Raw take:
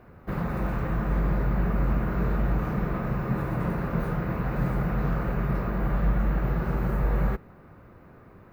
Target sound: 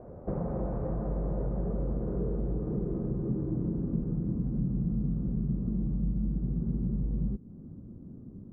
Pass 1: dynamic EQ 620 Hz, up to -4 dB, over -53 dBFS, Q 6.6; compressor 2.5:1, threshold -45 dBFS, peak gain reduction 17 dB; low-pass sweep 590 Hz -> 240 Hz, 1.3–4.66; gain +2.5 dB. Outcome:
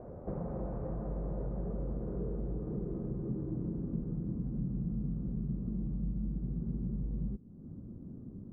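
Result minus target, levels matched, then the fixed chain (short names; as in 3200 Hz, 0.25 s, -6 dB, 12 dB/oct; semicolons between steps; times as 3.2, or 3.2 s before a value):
compressor: peak gain reduction +5.5 dB
dynamic EQ 620 Hz, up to -4 dB, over -53 dBFS, Q 6.6; compressor 2.5:1, threshold -36 dBFS, peak gain reduction 11.5 dB; low-pass sweep 590 Hz -> 240 Hz, 1.3–4.66; gain +2.5 dB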